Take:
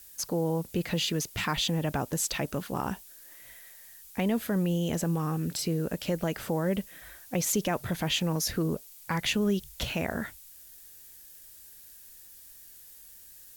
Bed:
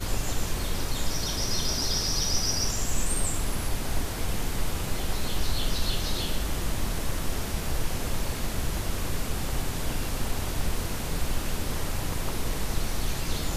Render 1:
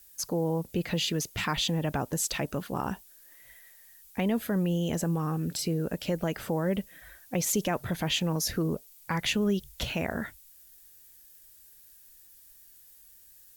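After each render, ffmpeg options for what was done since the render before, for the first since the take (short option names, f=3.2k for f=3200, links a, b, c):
-af "afftdn=nr=6:nf=-51"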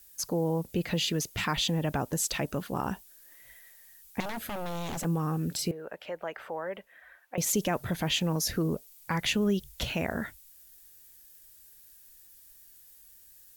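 -filter_complex "[0:a]asettb=1/sr,asplit=3[a][b][c];[a]atrim=end=4.204[d];[b]atrim=start=4.2:end=5.05,asetpts=PTS-STARTPTS,afade=t=in:d=0.004:c=qsin,afade=t=out:st=0.846:d=0.004:c=qsin,aeval=exprs='0.0316*(abs(mod(val(0)/0.0316+3,4)-2)-1)':c=same[e];[c]atrim=start=5.046[f];[d][e]acrossfade=d=0.004:c1=hsin:c2=qsin[g];[g][f]acrossfade=d=0.004:c1=qsin:c2=hsin,asettb=1/sr,asplit=3[h][i][j];[h]atrim=end=5.714[k];[i]atrim=start=5.71:end=7.38,asetpts=PTS-STARTPTS,afade=t=in:d=0.004:c=qsin,afade=t=out:st=1.666:d=0.004:c=qsin,acrossover=split=500 2600:gain=0.0708 1 0.112[l][m][n];[l][m][n]amix=inputs=3:normalize=0[o];[j]atrim=start=7.376[p];[k][o]acrossfade=d=0.004:c1=hsin:c2=qsin[q];[q][p]acrossfade=d=0.004:c1=qsin:c2=hsin"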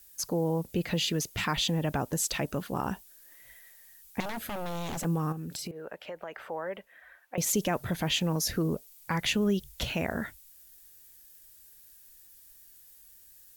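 -filter_complex "[0:a]asettb=1/sr,asplit=3[a][b][c];[a]atrim=end=5.324[d];[b]atrim=start=5.32:end=6.39,asetpts=PTS-STARTPTS,afade=t=in:d=0.004:c=qsin,afade=t=out:st=1.066:d=0.004:c=qsin,acompressor=threshold=-34dB:ratio=6:attack=3.2:release=140:knee=1:detection=peak[e];[c]atrim=start=6.386[f];[d][e]acrossfade=d=0.004:c1=hsin:c2=qsin[g];[g][f]acrossfade=d=0.004:c1=qsin:c2=hsin"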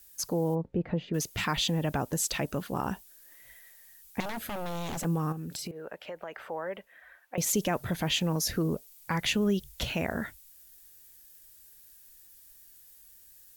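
-filter_complex "[0:a]asplit=3[a][b][c];[a]afade=t=out:st=0.54:d=0.02[d];[b]lowpass=1.1k,afade=t=in:st=0.54:d=0.02,afade=t=out:st=1.13:d=0.02[e];[c]afade=t=in:st=1.13:d=0.02[f];[d][e][f]amix=inputs=3:normalize=0"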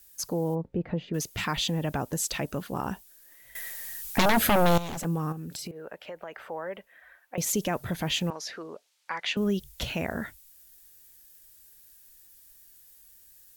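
-filter_complex "[0:a]asettb=1/sr,asplit=3[a][b][c];[a]atrim=end=3.554[d];[b]atrim=start=3.55:end=4.78,asetpts=PTS-STARTPTS,afade=t=in:d=0.004:c=qsin,afade=t=out:st=1.226:d=0.004:c=qsin,aeval=exprs='0.158*sin(PI/2*3.98*val(0)/0.158)':c=same[e];[c]atrim=start=4.776[f];[d][e]acrossfade=d=0.004:c1=hsin:c2=qsin[g];[g][f]acrossfade=d=0.004:c1=qsin:c2=hsin,asettb=1/sr,asplit=3[h][i][j];[h]atrim=end=8.304[k];[i]atrim=start=8.3:end=9.37,asetpts=PTS-STARTPTS,afade=t=in:d=0.004:c=qsin,afade=t=out:st=1.066:d=0.004:c=qsin,highpass=640,lowpass=4.3k[l];[j]atrim=start=9.366[m];[k][l]acrossfade=d=0.004:c1=hsin:c2=qsin[n];[n][m]acrossfade=d=0.004:c1=qsin:c2=hsin"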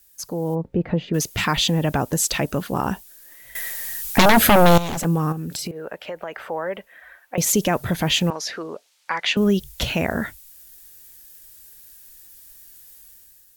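-af "dynaudnorm=f=120:g=9:m=8.5dB"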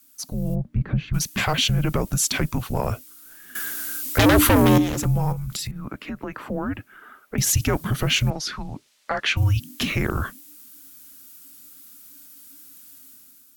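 -af "afreqshift=-300,asoftclip=type=tanh:threshold=-8.5dB"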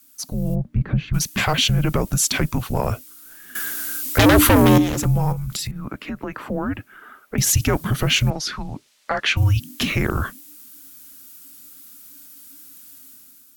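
-af "volume=2.5dB"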